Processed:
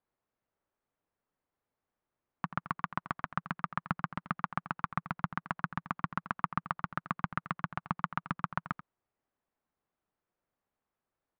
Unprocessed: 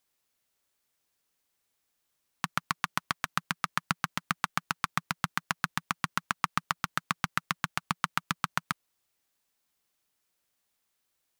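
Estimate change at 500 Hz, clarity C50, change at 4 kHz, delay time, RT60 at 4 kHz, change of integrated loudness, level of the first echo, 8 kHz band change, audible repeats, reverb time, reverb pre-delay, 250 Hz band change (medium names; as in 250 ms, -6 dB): 0.0 dB, no reverb, -18.0 dB, 85 ms, no reverb, -4.0 dB, -13.5 dB, under -30 dB, 1, no reverb, no reverb, 0.0 dB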